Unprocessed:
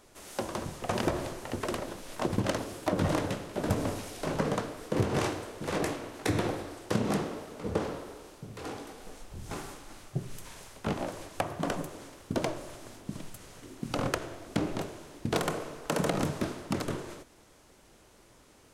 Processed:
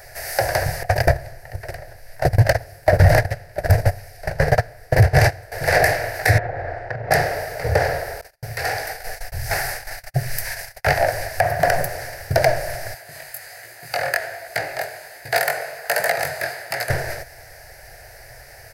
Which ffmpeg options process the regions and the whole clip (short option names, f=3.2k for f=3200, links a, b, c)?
-filter_complex "[0:a]asettb=1/sr,asplit=3[a][b][c];[a]atrim=end=0.834[d];[b]atrim=start=0.83:end=5.52,asetpts=PTS-STARTPTS,afade=t=in:d=0.004:c=qsin,afade=t=out:st=4.686:d=0.004:c=qsin,agate=range=-19dB:threshold=-30dB:ratio=16:release=100:detection=peak,lowshelf=f=230:g=9[e];[c]atrim=start=5.516[f];[d][e]acrossfade=d=0.004:c1=hsin:c2=qsin[g];[g][f]acrossfade=d=0.004:c1=qsin:c2=hsin,asettb=1/sr,asplit=3[h][i][j];[h]atrim=end=6.384[k];[i]atrim=start=6.38:end=7.11,asetpts=PTS-STARTPTS,afade=t=in:d=0.004:c=qsin,afade=t=out:st=0.726:d=0.004:c=qsin,lowpass=1.6k,acompressor=threshold=-37dB:ratio=10:attack=3.2:release=140:knee=1:detection=peak[l];[j]atrim=start=7.106[m];[k][l]acrossfade=d=0.004:c1=hsin:c2=qsin[n];[n][m]acrossfade=d=0.004:c1=qsin:c2=hsin,asettb=1/sr,asplit=3[o][p][q];[o]atrim=end=8.214[r];[p]atrim=start=8.21:end=10.99,asetpts=PTS-STARTPTS,afade=t=in:d=0.004:c=qsin,afade=t=out:st=2.776:d=0.004:c=qsin,agate=range=-41dB:threshold=-48dB:ratio=16:release=100:detection=peak,tiltshelf=f=690:g=-3[s];[q]atrim=start=10.986[t];[r][s]acrossfade=d=0.004:c1=hsin:c2=qsin[u];[u][t]acrossfade=d=0.004:c1=qsin:c2=hsin,asettb=1/sr,asplit=3[v][w][x];[v]atrim=end=12.944[y];[w]atrim=start=12.94:end=16.9,asetpts=PTS-STARTPTS,afade=t=in:d=0.004:c=qsin,afade=t=out:st=3.956:d=0.004:c=qsin,highpass=f=850:p=1,bandreject=f=5.6k:w=7.3,flanger=delay=16.5:depth=6:speed=1.3[z];[x]atrim=start=16.896[aa];[y][z]acrossfade=d=0.004:c1=hsin:c2=qsin[ab];[ab][aa]acrossfade=d=0.004:c1=qsin:c2=hsin,firequalizer=gain_entry='entry(130,0);entry(210,-30);entry(460,-7);entry(700,5);entry(1100,-18);entry(1700,9);entry(3300,-16);entry(4700,3);entry(6900,-9);entry(13000,7)':delay=0.05:min_phase=1,alimiter=level_in=20.5dB:limit=-1dB:release=50:level=0:latency=1,volume=-2.5dB"